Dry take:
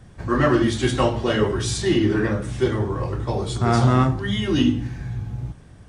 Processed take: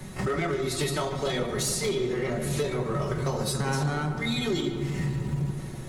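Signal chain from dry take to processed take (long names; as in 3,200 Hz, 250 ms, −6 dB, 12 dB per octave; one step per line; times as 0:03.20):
high-pass filter 80 Hz 12 dB per octave
high-shelf EQ 4,000 Hz +9 dB
comb filter 6.2 ms, depth 52%
dynamic equaliser 1,400 Hz, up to −6 dB, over −42 dBFS, Q 7.2
downward compressor 12 to 1, threshold −31 dBFS, peak gain reduction 20 dB
gain into a clipping stage and back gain 27.5 dB
pitch shifter +2.5 semitones
background noise brown −53 dBFS
on a send: feedback echo with a low-pass in the loop 148 ms, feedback 79%, low-pass 3,000 Hz, level −11 dB
on the sum: level +6 dB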